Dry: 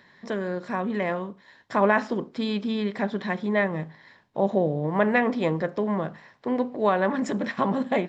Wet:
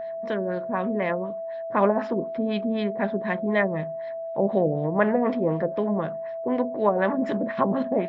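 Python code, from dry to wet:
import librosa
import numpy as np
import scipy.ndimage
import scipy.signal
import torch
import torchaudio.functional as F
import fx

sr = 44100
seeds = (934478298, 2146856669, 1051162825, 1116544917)

y = fx.filter_lfo_lowpass(x, sr, shape='sine', hz=4.0, low_hz=420.0, high_hz=3900.0, q=1.2)
y = y + 10.0 ** (-30.0 / 20.0) * np.sin(2.0 * np.pi * 660.0 * np.arange(len(y)) / sr)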